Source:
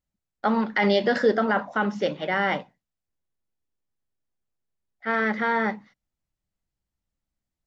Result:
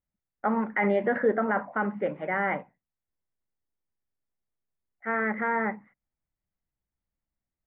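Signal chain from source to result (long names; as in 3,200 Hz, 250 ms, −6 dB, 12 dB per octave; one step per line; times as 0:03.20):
Chebyshev low-pass filter 2,200 Hz, order 4
level −3 dB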